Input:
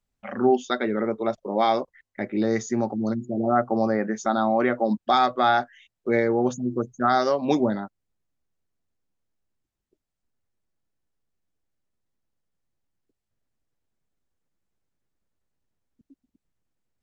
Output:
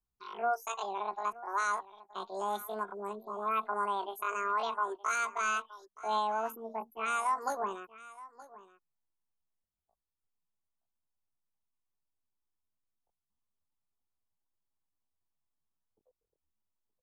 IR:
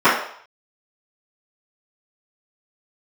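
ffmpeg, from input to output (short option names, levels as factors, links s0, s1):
-af "asetrate=80880,aresample=44100,atempo=0.545254,equalizer=f=125:t=o:w=1:g=-4,equalizer=f=250:t=o:w=1:g=-3,equalizer=f=500:t=o:w=1:g=-10,equalizer=f=1000:t=o:w=1:g=6,equalizer=f=2000:t=o:w=1:g=-11,equalizer=f=4000:t=o:w=1:g=-4,aecho=1:1:922:0.119,volume=0.398"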